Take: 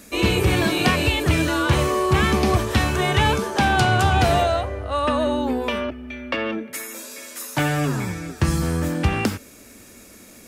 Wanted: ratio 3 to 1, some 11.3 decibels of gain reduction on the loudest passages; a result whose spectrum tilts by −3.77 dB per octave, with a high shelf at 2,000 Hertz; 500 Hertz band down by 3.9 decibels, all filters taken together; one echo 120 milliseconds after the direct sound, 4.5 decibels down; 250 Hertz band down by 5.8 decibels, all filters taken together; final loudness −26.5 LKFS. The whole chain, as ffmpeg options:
ffmpeg -i in.wav -af "equalizer=frequency=250:width_type=o:gain=-7.5,equalizer=frequency=500:width_type=o:gain=-3.5,highshelf=frequency=2000:gain=5.5,acompressor=threshold=-30dB:ratio=3,aecho=1:1:120:0.596,volume=2.5dB" out.wav

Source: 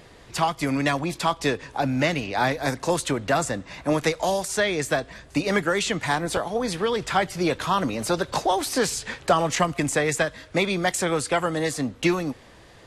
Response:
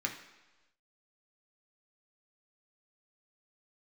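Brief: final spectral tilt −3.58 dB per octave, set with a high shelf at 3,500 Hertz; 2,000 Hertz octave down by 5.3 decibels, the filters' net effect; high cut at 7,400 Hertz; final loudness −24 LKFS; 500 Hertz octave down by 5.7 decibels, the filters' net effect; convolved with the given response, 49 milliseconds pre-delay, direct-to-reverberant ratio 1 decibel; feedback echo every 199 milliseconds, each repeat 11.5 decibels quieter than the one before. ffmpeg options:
-filter_complex "[0:a]lowpass=7400,equalizer=frequency=500:width_type=o:gain=-7,equalizer=frequency=2000:width_type=o:gain=-8.5,highshelf=frequency=3500:gain=7.5,aecho=1:1:199|398|597:0.266|0.0718|0.0194,asplit=2[link_01][link_02];[1:a]atrim=start_sample=2205,adelay=49[link_03];[link_02][link_03]afir=irnorm=-1:irlink=0,volume=-5dB[link_04];[link_01][link_04]amix=inputs=2:normalize=0,volume=0.5dB"

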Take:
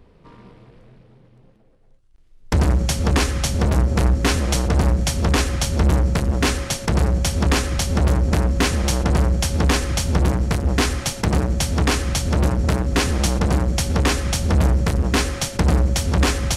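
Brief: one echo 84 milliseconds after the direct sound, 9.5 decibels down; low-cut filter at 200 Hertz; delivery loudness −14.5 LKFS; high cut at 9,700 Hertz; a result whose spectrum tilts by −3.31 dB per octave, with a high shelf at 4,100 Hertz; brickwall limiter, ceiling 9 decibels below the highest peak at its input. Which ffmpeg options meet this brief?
ffmpeg -i in.wav -af "highpass=200,lowpass=9700,highshelf=frequency=4100:gain=4.5,alimiter=limit=-13.5dB:level=0:latency=1,aecho=1:1:84:0.335,volume=11dB" out.wav

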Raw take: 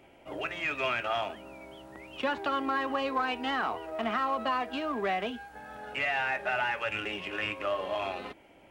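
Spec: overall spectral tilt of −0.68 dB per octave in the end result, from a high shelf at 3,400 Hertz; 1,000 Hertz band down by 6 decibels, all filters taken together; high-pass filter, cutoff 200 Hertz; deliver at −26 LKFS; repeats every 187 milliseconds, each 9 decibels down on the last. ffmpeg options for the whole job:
ffmpeg -i in.wav -af "highpass=200,equalizer=frequency=1000:width_type=o:gain=-7.5,highshelf=frequency=3400:gain=-5,aecho=1:1:187|374|561|748:0.355|0.124|0.0435|0.0152,volume=8.5dB" out.wav

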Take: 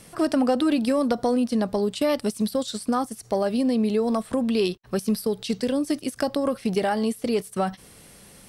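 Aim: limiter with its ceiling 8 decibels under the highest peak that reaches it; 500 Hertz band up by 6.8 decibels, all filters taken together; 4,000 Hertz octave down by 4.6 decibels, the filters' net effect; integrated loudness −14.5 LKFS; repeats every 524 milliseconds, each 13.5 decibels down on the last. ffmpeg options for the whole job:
ffmpeg -i in.wav -af "equalizer=frequency=500:width_type=o:gain=8,equalizer=frequency=4000:width_type=o:gain=-6,alimiter=limit=-12.5dB:level=0:latency=1,aecho=1:1:524|1048:0.211|0.0444,volume=7.5dB" out.wav

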